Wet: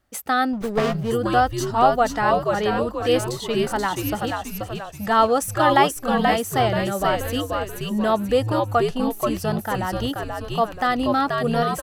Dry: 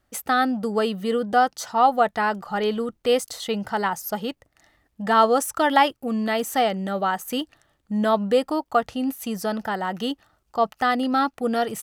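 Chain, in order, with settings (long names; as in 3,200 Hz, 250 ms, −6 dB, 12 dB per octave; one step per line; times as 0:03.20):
echo with shifted repeats 481 ms, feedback 46%, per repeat −100 Hz, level −3.5 dB
0:00.53–0:01.11: windowed peak hold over 17 samples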